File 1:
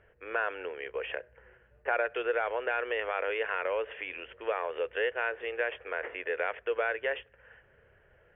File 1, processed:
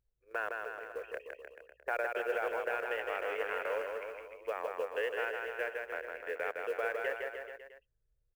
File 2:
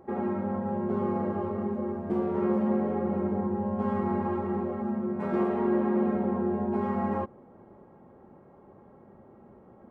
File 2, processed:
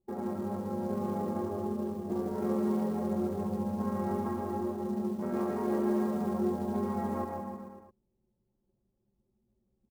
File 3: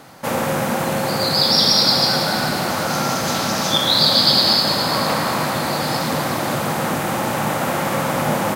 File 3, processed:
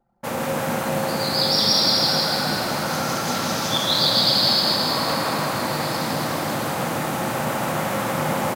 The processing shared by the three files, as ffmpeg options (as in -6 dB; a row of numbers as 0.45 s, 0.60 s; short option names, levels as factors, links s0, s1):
-filter_complex "[0:a]anlmdn=15.8,acrusher=bits=7:mode=log:mix=0:aa=0.000001,asplit=2[s0][s1];[s1]aecho=0:1:160|304|433.6|550.2|655.2:0.631|0.398|0.251|0.158|0.1[s2];[s0][s2]amix=inputs=2:normalize=0,volume=0.531"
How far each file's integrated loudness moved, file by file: -4.0 LU, -4.0 LU, -3.5 LU